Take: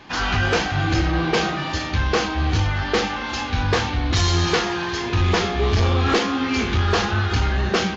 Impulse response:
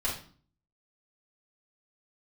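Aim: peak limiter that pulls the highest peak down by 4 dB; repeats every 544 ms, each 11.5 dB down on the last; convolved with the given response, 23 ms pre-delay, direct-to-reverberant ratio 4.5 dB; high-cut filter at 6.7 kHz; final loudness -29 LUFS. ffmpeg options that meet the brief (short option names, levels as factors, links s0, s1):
-filter_complex "[0:a]lowpass=6700,alimiter=limit=0.168:level=0:latency=1,aecho=1:1:544|1088|1632:0.266|0.0718|0.0194,asplit=2[s0][s1];[1:a]atrim=start_sample=2205,adelay=23[s2];[s1][s2]afir=irnorm=-1:irlink=0,volume=0.282[s3];[s0][s3]amix=inputs=2:normalize=0,volume=0.355"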